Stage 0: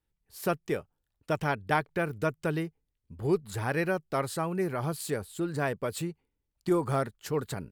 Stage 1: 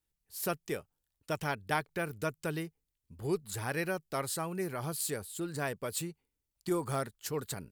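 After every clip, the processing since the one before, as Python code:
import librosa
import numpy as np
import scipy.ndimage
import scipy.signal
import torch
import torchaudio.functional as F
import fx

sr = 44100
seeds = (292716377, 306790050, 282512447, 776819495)

y = fx.high_shelf(x, sr, hz=3600.0, db=11.5)
y = F.gain(torch.from_numpy(y), -6.0).numpy()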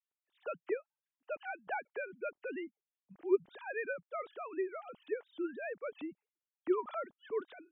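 y = fx.sine_speech(x, sr)
y = F.gain(torch.from_numpy(y), -3.0).numpy()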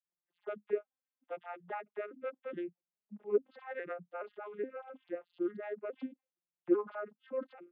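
y = fx.vocoder_arp(x, sr, chord='minor triad', root=53, every_ms=421)
y = F.gain(torch.from_numpy(y), 1.0).numpy()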